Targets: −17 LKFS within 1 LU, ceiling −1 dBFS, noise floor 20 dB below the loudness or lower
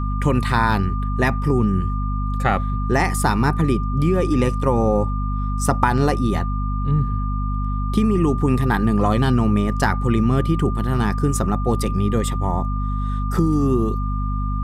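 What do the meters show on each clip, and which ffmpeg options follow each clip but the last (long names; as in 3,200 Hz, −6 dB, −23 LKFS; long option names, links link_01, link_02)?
mains hum 50 Hz; hum harmonics up to 250 Hz; level of the hum −20 dBFS; interfering tone 1,200 Hz; level of the tone −30 dBFS; integrated loudness −20.5 LKFS; sample peak −2.5 dBFS; target loudness −17.0 LKFS
→ -af "bandreject=frequency=50:width_type=h:width=6,bandreject=frequency=100:width_type=h:width=6,bandreject=frequency=150:width_type=h:width=6,bandreject=frequency=200:width_type=h:width=6,bandreject=frequency=250:width_type=h:width=6"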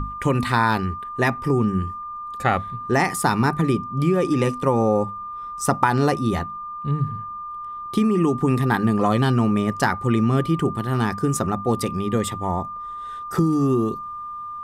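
mains hum none found; interfering tone 1,200 Hz; level of the tone −30 dBFS
→ -af "bandreject=frequency=1200:width=30"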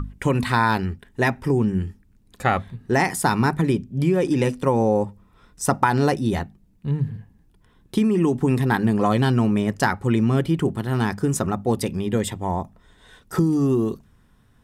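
interfering tone none found; integrated loudness −22.0 LKFS; sample peak −3.5 dBFS; target loudness −17.0 LKFS
→ -af "volume=5dB,alimiter=limit=-1dB:level=0:latency=1"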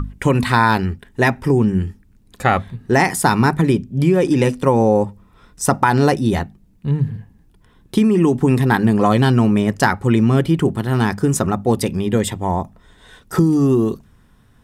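integrated loudness −17.0 LKFS; sample peak −1.0 dBFS; background noise floor −53 dBFS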